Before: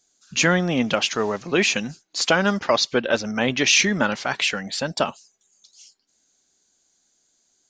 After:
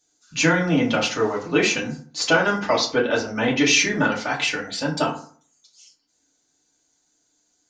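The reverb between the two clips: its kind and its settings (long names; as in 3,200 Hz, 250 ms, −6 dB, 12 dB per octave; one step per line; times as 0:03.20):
feedback delay network reverb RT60 0.47 s, low-frequency decay 1.1×, high-frequency decay 0.5×, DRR −4 dB
level −5 dB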